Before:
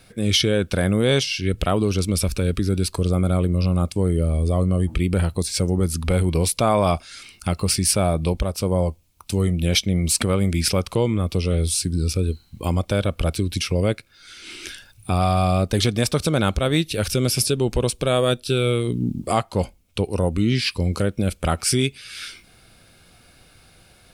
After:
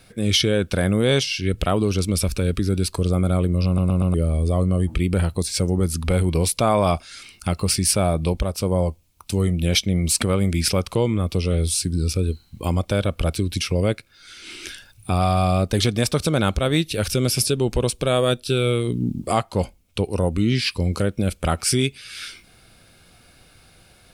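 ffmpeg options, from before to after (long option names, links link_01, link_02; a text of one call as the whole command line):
ffmpeg -i in.wav -filter_complex "[0:a]asplit=5[link_01][link_02][link_03][link_04][link_05];[link_01]atrim=end=3.782[link_06];[link_02]atrim=start=3.658:end=3.782[link_07];[link_03]atrim=start=3.658:end=3.782[link_08];[link_04]atrim=start=3.658:end=3.782[link_09];[link_05]atrim=start=4.138[link_10];[link_06][link_07]acrossfade=duration=0.004:curve1=hsin:curve2=hsin[link_11];[link_11][link_08]acrossfade=duration=0.004:curve1=hsin:curve2=hsin[link_12];[link_12][link_09]acrossfade=duration=0.004:curve1=hsin:curve2=hsin[link_13];[link_13][link_10]acrossfade=duration=0.004:curve1=hsin:curve2=hsin" out.wav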